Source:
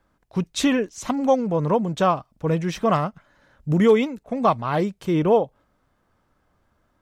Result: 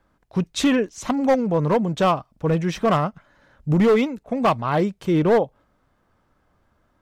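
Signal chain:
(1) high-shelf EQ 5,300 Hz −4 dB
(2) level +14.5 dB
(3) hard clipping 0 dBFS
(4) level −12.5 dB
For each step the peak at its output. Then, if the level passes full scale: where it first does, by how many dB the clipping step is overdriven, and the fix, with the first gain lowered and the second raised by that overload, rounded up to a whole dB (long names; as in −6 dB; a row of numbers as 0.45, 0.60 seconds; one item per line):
−6.0, +8.5, 0.0, −12.5 dBFS
step 2, 8.5 dB
step 2 +5.5 dB, step 4 −3.5 dB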